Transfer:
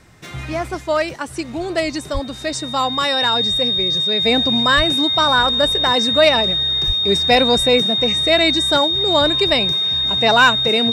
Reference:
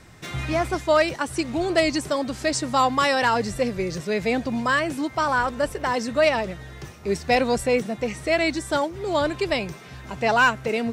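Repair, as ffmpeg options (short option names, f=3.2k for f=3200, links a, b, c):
-filter_complex "[0:a]bandreject=f=3.7k:w=30,asplit=3[a][b][c];[a]afade=t=out:st=2.13:d=0.02[d];[b]highpass=f=140:w=0.5412,highpass=f=140:w=1.3066,afade=t=in:st=2.13:d=0.02,afade=t=out:st=2.25:d=0.02[e];[c]afade=t=in:st=2.25:d=0.02[f];[d][e][f]amix=inputs=3:normalize=0,asplit=3[g][h][i];[g]afade=t=out:st=4.76:d=0.02[j];[h]highpass=f=140:w=0.5412,highpass=f=140:w=1.3066,afade=t=in:st=4.76:d=0.02,afade=t=out:st=4.88:d=0.02[k];[i]afade=t=in:st=4.88:d=0.02[l];[j][k][l]amix=inputs=3:normalize=0,asplit=3[m][n][o];[m]afade=t=out:st=6.86:d=0.02[p];[n]highpass=f=140:w=0.5412,highpass=f=140:w=1.3066,afade=t=in:st=6.86:d=0.02,afade=t=out:st=6.98:d=0.02[q];[o]afade=t=in:st=6.98:d=0.02[r];[p][q][r]amix=inputs=3:normalize=0,asetnsamples=n=441:p=0,asendcmd='4.25 volume volume -5.5dB',volume=0dB"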